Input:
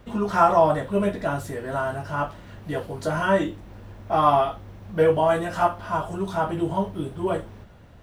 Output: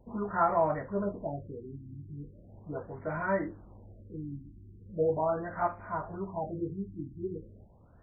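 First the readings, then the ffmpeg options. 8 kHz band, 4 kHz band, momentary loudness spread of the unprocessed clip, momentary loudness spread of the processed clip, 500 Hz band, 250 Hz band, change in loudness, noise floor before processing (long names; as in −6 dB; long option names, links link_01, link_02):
can't be measured, below −40 dB, 13 LU, 17 LU, −10.0 dB, −9.5 dB, −10.0 dB, −47 dBFS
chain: -af "aemphasis=mode=production:type=50fm,afftfilt=real='re*lt(b*sr/1024,360*pow(2500/360,0.5+0.5*sin(2*PI*0.39*pts/sr)))':imag='im*lt(b*sr/1024,360*pow(2500/360,0.5+0.5*sin(2*PI*0.39*pts/sr)))':win_size=1024:overlap=0.75,volume=-9dB"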